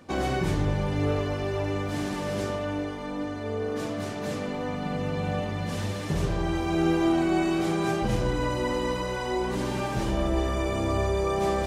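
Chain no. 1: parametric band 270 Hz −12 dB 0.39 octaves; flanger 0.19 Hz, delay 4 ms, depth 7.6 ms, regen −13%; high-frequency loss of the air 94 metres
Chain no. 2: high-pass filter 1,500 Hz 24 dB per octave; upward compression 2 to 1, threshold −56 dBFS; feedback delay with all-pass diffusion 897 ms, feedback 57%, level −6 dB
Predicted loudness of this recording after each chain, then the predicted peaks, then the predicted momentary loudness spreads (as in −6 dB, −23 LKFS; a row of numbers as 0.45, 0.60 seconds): −33.5, −38.0 LKFS; −17.5, −25.5 dBFS; 6, 5 LU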